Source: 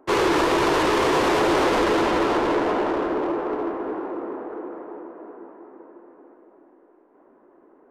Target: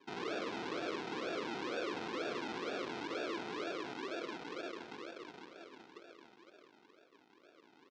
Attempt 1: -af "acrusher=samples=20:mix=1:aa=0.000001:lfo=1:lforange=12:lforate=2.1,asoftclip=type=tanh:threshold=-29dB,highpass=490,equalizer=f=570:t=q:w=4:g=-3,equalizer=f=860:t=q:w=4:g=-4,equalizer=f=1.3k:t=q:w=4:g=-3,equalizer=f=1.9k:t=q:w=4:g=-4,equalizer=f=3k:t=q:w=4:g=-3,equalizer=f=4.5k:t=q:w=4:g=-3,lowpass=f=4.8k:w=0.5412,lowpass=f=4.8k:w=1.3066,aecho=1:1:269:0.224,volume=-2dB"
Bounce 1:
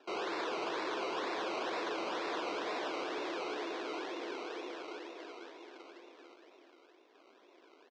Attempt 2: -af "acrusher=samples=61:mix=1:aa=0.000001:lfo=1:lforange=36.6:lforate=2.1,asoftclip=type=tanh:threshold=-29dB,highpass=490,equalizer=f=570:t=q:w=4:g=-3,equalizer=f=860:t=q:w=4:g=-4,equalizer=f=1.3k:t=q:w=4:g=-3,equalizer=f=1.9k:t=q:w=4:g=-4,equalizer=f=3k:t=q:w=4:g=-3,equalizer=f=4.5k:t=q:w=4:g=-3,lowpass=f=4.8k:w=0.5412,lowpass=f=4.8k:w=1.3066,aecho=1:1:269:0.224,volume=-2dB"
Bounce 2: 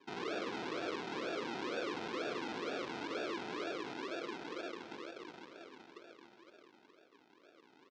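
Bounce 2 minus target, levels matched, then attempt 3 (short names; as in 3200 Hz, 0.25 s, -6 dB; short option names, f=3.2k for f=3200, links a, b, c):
echo 85 ms late
-af "acrusher=samples=61:mix=1:aa=0.000001:lfo=1:lforange=36.6:lforate=2.1,asoftclip=type=tanh:threshold=-29dB,highpass=490,equalizer=f=570:t=q:w=4:g=-3,equalizer=f=860:t=q:w=4:g=-4,equalizer=f=1.3k:t=q:w=4:g=-3,equalizer=f=1.9k:t=q:w=4:g=-4,equalizer=f=3k:t=q:w=4:g=-3,equalizer=f=4.5k:t=q:w=4:g=-3,lowpass=f=4.8k:w=0.5412,lowpass=f=4.8k:w=1.3066,aecho=1:1:184:0.224,volume=-2dB"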